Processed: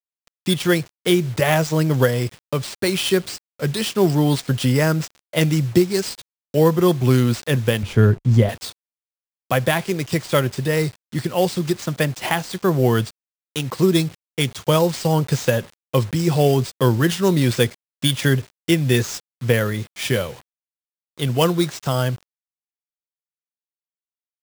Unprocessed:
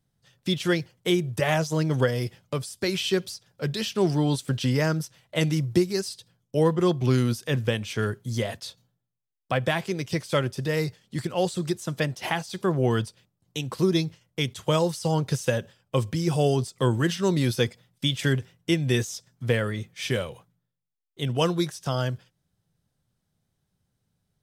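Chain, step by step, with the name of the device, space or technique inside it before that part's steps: early 8-bit sampler (sample-rate reducer 13000 Hz, jitter 0%; bit-crush 8-bit); 7.83–8.49 tilt -3 dB/oct; gain +6 dB

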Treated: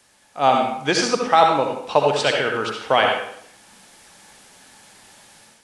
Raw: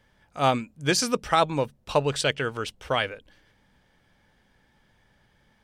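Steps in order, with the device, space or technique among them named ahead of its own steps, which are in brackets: filmed off a television (BPF 200–6200 Hz; bell 790 Hz +6 dB 0.57 oct; reverb RT60 0.65 s, pre-delay 58 ms, DRR 1.5 dB; white noise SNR 31 dB; AGC gain up to 9 dB; AAC 64 kbps 24000 Hz)

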